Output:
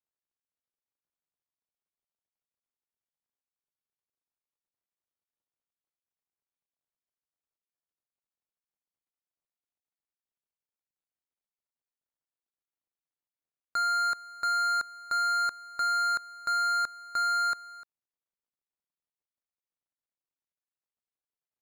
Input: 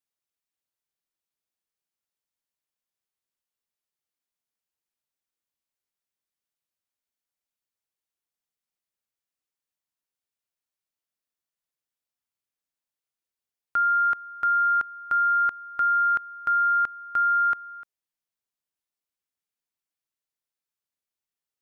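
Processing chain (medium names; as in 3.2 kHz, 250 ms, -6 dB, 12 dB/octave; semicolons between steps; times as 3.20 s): median filter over 25 samples; peaking EQ 980 Hz +2.5 dB 2.4 oct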